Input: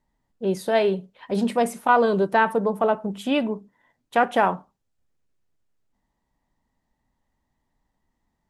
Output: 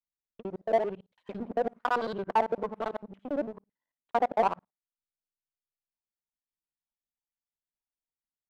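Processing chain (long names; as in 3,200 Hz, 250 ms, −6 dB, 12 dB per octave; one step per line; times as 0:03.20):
reversed piece by piece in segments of 56 ms
auto-filter low-pass sine 1.1 Hz 590–4,800 Hz
power curve on the samples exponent 1.4
level −8 dB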